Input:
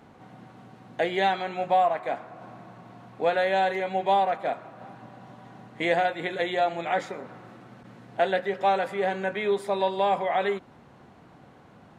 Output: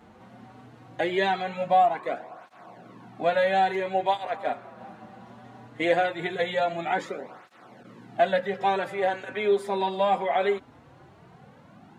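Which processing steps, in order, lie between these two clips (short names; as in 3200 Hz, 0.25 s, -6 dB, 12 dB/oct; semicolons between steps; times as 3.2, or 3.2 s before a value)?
tape flanging out of phase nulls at 0.2 Hz, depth 7.5 ms; gain +3 dB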